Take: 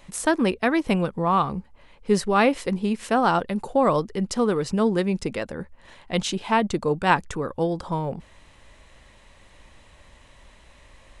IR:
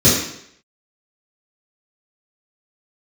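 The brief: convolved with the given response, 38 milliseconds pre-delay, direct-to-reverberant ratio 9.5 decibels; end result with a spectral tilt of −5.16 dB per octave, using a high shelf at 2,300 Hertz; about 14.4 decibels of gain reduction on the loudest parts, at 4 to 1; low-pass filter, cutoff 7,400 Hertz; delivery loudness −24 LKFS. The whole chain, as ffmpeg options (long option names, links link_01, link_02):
-filter_complex "[0:a]lowpass=7400,highshelf=frequency=2300:gain=4.5,acompressor=threshold=-32dB:ratio=4,asplit=2[link_01][link_02];[1:a]atrim=start_sample=2205,adelay=38[link_03];[link_02][link_03]afir=irnorm=-1:irlink=0,volume=-32.5dB[link_04];[link_01][link_04]amix=inputs=2:normalize=0,volume=9dB"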